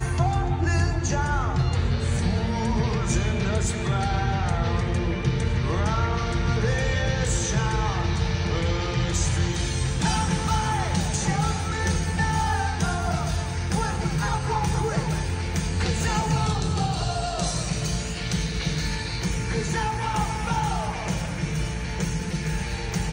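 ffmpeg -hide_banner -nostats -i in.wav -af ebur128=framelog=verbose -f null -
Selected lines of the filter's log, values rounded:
Integrated loudness:
  I:         -25.3 LUFS
  Threshold: -35.3 LUFS
Loudness range:
  LRA:         2.3 LU
  Threshold: -45.3 LUFS
  LRA low:   -26.9 LUFS
  LRA high:  -24.5 LUFS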